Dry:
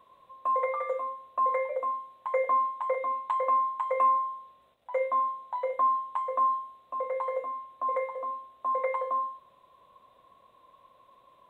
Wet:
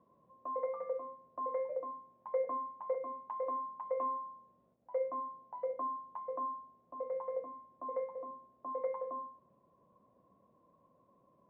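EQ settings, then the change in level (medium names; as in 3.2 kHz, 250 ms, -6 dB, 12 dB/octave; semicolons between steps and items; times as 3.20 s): band-pass filter 200 Hz, Q 1.4; distance through air 320 m; +5.5 dB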